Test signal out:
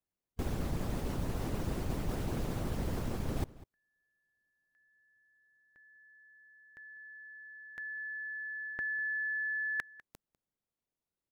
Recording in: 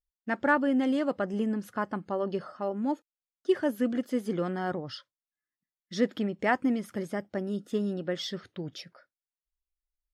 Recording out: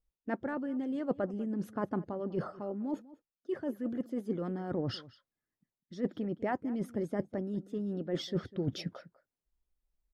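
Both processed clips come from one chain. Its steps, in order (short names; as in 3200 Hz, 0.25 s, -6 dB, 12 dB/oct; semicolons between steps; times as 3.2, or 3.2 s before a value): tilt shelf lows +9 dB, about 850 Hz; reverse; compressor 8:1, threshold -34 dBFS; reverse; harmonic-percussive split percussive +8 dB; outdoor echo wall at 34 m, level -19 dB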